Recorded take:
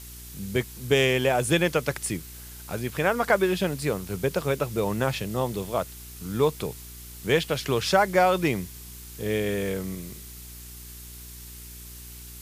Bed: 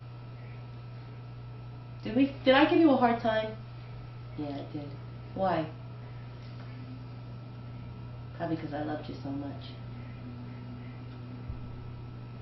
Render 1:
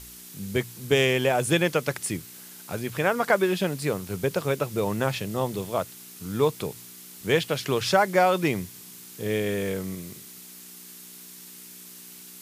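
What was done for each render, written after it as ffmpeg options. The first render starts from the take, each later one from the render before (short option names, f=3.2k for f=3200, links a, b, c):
-af "bandreject=f=60:t=h:w=4,bandreject=f=120:t=h:w=4"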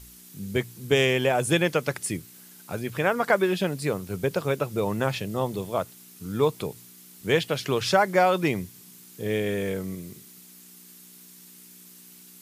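-af "afftdn=nr=6:nf=-45"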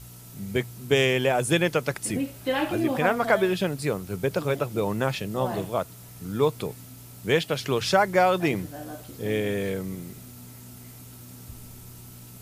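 -filter_complex "[1:a]volume=-4dB[a];[0:a][a]amix=inputs=2:normalize=0"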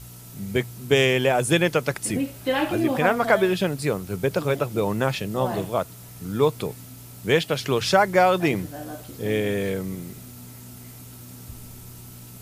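-af "volume=2.5dB"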